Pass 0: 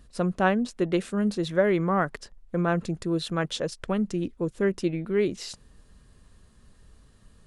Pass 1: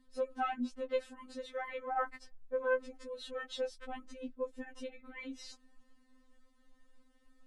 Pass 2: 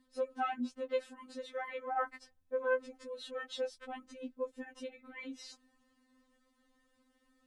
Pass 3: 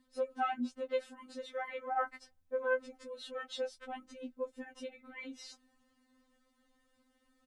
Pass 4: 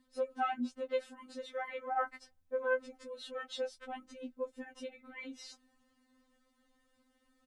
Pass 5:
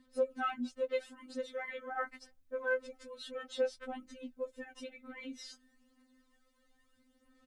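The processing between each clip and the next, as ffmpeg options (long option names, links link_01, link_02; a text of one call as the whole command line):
ffmpeg -i in.wav -af "highshelf=frequency=4300:gain=-9.5,afftfilt=real='re*3.46*eq(mod(b,12),0)':imag='im*3.46*eq(mod(b,12),0)':win_size=2048:overlap=0.75,volume=-6dB" out.wav
ffmpeg -i in.wav -af "highpass=frequency=87:poles=1" out.wav
ffmpeg -i in.wav -filter_complex "[0:a]asplit=2[link_01][link_02];[link_02]adelay=13,volume=-13dB[link_03];[link_01][link_03]amix=inputs=2:normalize=0" out.wav
ffmpeg -i in.wav -af anull out.wav
ffmpeg -i in.wav -af "equalizer=frequency=870:width=4.3:gain=-8,aphaser=in_gain=1:out_gain=1:delay=4.5:decay=0.49:speed=0.27:type=sinusoidal" out.wav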